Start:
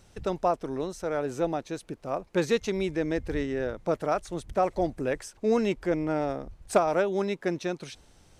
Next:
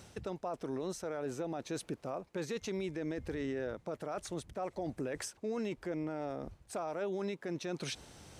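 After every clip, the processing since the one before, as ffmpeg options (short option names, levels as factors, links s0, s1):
-af "highpass=75,areverse,acompressor=threshold=0.0141:ratio=4,areverse,alimiter=level_in=3.35:limit=0.0631:level=0:latency=1:release=70,volume=0.299,volume=1.88"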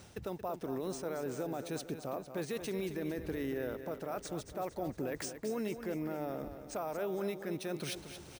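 -filter_complex "[0:a]acrusher=samples=3:mix=1:aa=0.000001,asplit=2[s0][s1];[s1]aecho=0:1:228|456|684|912|1140|1368:0.316|0.161|0.0823|0.0419|0.0214|0.0109[s2];[s0][s2]amix=inputs=2:normalize=0"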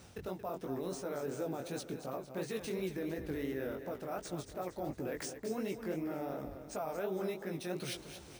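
-af "flanger=delay=15.5:depth=7.5:speed=2.8,volume=1.26"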